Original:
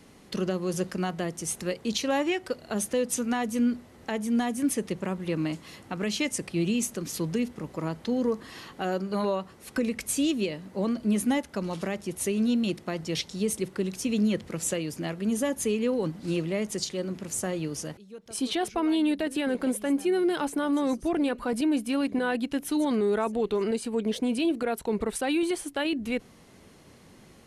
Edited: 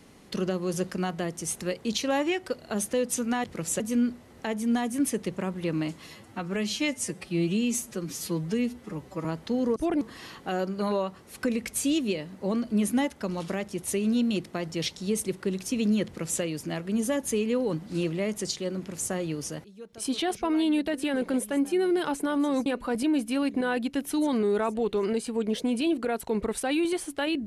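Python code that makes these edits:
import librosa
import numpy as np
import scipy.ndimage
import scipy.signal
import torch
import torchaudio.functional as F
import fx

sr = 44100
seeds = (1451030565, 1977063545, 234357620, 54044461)

y = fx.edit(x, sr, fx.stretch_span(start_s=5.71, length_s=2.12, factor=1.5),
    fx.duplicate(start_s=14.39, length_s=0.36, to_s=3.44),
    fx.move(start_s=20.99, length_s=0.25, to_s=8.34), tone=tone)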